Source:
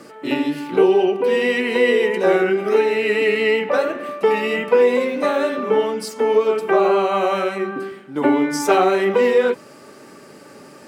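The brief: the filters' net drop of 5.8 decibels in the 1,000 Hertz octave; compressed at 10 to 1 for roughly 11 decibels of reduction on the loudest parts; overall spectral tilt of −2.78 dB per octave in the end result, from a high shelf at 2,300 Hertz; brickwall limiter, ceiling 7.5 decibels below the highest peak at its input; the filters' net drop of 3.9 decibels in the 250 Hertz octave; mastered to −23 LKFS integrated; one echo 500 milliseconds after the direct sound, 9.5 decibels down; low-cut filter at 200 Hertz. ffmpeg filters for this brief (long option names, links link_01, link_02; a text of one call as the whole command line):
ffmpeg -i in.wav -af "highpass=200,equalizer=frequency=250:width_type=o:gain=-3.5,equalizer=frequency=1000:width_type=o:gain=-9,highshelf=frequency=2300:gain=6,acompressor=threshold=-24dB:ratio=10,alimiter=limit=-22dB:level=0:latency=1,aecho=1:1:500:0.335,volume=7dB" out.wav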